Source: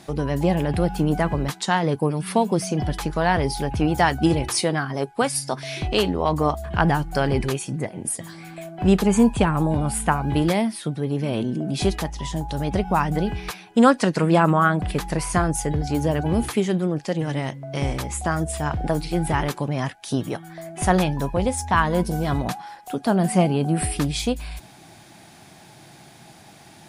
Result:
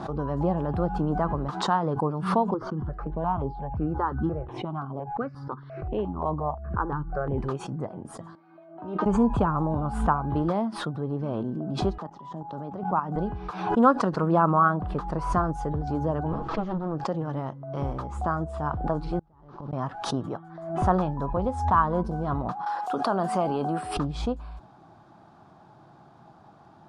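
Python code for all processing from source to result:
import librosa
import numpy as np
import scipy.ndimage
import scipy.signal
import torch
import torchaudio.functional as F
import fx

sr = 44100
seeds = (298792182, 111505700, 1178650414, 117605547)

y = fx.chain(x, sr, fx.air_absorb(metres=370.0),
    fx.phaser_held(hz=5.7, low_hz=680.0, high_hz=6400.0), at=(2.54, 7.38))
y = fx.chain(y, sr, fx.over_compress(threshold_db=-21.0, ratio=-1.0),
    fx.bandpass_edges(low_hz=230.0, high_hz=3400.0),
    fx.comb_fb(f0_hz=310.0, decay_s=0.22, harmonics='all', damping=0.0, mix_pct=90), at=(8.35, 9.06))
y = fx.chain(y, sr, fx.highpass(hz=150.0, slope=24),
    fx.high_shelf(hz=3400.0, db=-5.5),
    fx.level_steps(step_db=10), at=(11.98, 13.16))
y = fx.chain(y, sr, fx.lower_of_two(delay_ms=6.2),
    fx.lowpass(hz=5700.0, slope=24), at=(16.32, 16.95))
y = fx.chain(y, sr, fx.delta_mod(bps=32000, step_db=-33.5),
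    fx.low_shelf(hz=380.0, db=6.0),
    fx.gate_flip(shuts_db=-18.0, range_db=-37), at=(19.19, 19.73))
y = fx.chain(y, sr, fx.highpass(hz=250.0, slope=6),
    fx.tilt_eq(slope=2.5),
    fx.env_flatten(amount_pct=70), at=(22.66, 23.97))
y = scipy.signal.sosfilt(scipy.signal.butter(2, 3900.0, 'lowpass', fs=sr, output='sos'), y)
y = fx.high_shelf_res(y, sr, hz=1600.0, db=-9.5, q=3.0)
y = fx.pre_swell(y, sr, db_per_s=73.0)
y = y * librosa.db_to_amplitude(-6.0)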